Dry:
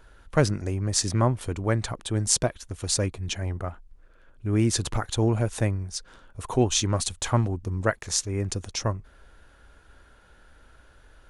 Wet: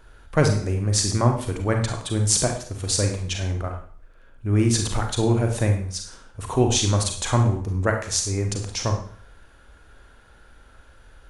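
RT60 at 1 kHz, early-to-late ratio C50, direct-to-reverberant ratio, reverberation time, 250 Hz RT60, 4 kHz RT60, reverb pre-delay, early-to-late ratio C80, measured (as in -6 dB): 0.50 s, 6.5 dB, 3.0 dB, 0.50 s, 0.50 s, 0.50 s, 35 ms, 11.0 dB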